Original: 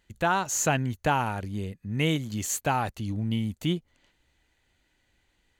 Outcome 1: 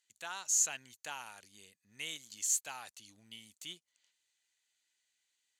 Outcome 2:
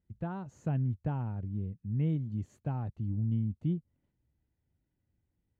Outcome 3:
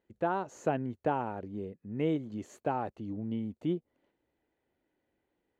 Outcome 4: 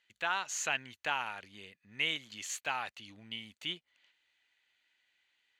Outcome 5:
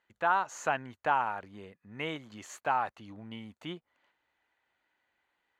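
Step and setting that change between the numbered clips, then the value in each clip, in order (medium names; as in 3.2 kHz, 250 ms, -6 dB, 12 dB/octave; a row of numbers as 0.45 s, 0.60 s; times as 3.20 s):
band-pass filter, frequency: 7.3 kHz, 120 Hz, 410 Hz, 2.7 kHz, 1.1 kHz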